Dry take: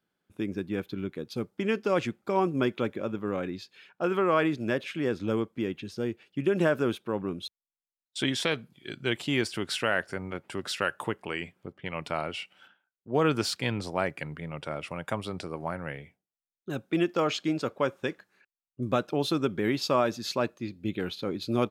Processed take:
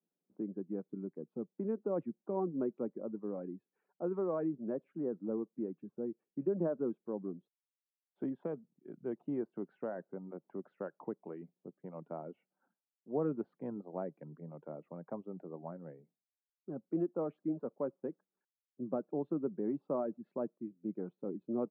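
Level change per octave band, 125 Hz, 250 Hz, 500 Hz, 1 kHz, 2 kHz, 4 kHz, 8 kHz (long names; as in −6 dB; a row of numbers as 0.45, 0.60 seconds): −12.5 dB, −7.5 dB, −8.5 dB, −15.5 dB, −29.5 dB, below −40 dB, below −35 dB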